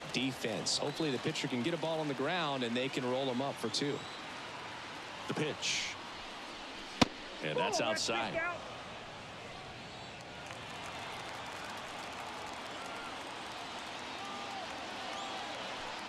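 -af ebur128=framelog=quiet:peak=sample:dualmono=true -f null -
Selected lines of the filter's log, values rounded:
Integrated loudness:
  I:         -34.5 LUFS
  Threshold: -44.5 LUFS
Loudness range:
  LRA:         8.4 LU
  Threshold: -54.7 LUFS
  LRA low:   -40.2 LUFS
  LRA high:  -31.8 LUFS
Sample peak:
  Peak:      -10.1 dBFS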